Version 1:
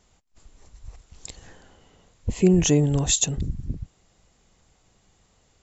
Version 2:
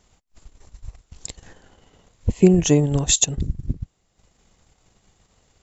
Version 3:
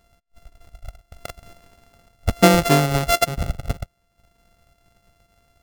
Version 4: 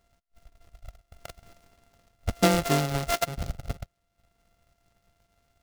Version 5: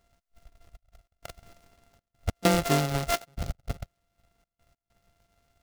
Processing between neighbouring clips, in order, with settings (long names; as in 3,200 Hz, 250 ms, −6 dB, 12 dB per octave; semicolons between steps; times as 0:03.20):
transient designer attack +4 dB, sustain −8 dB; level +2 dB
samples sorted by size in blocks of 64 samples
short delay modulated by noise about 3,300 Hz, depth 0.058 ms; level −8 dB
gate pattern "xxxxx.x." 98 BPM −24 dB